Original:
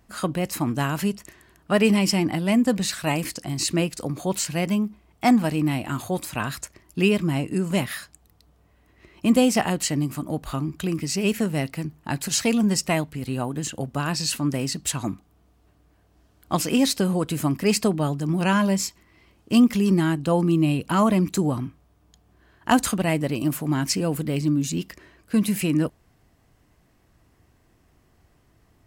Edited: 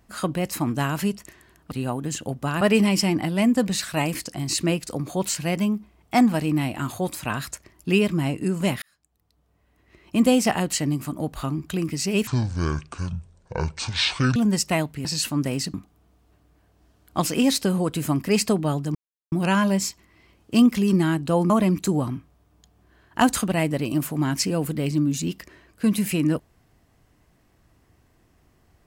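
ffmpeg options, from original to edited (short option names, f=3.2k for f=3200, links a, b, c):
-filter_complex "[0:a]asplit=10[a][b][c][d][e][f][g][h][i][j];[a]atrim=end=1.712[k];[b]atrim=start=13.228:end=14.132[l];[c]atrim=start=1.708:end=7.92,asetpts=PTS-STARTPTS,afade=t=out:st=6.208:d=0.004:c=hsin[m];[d]atrim=start=7.92:end=11.374,asetpts=PTS-STARTPTS,afade=t=in:d=1.47[n];[e]atrim=start=11.37:end=12.54,asetpts=PTS-STARTPTS,asetrate=24696,aresample=44100,atrim=end_sample=92137,asetpts=PTS-STARTPTS[o];[f]atrim=start=12.536:end=13.232[p];[g]atrim=start=14.128:end=14.822[q];[h]atrim=start=15.088:end=18.3,asetpts=PTS-STARTPTS,afade=t=out:st=3.208:d=0.004:c=hsin,apad=pad_dur=0.37[r];[i]atrim=start=18.3:end=20.482,asetpts=PTS-STARTPTS,afade=t=in:d=0.004:c=hsin[s];[j]atrim=start=20.998[t];[k][l]acrossfade=d=0.004:c1=hsin:c2=hsin[u];[m][n]concat=n=2:v=0:a=1[v];[u][v]acrossfade=d=0.004:c1=hsin:c2=hsin[w];[w][o]acrossfade=d=0.004:c1=hsin:c2=hsin[x];[x][p]acrossfade=d=0.004:c1=hsin:c2=hsin[y];[y][q]acrossfade=d=0.004:c1=hsin:c2=hsin[z];[r][s]concat=n=2:v=0:a=1[aa];[z][aa]acrossfade=d=0.004:c1=hsin:c2=hsin[ab];[ab][t]acrossfade=d=0.004:c1=hsin:c2=hsin"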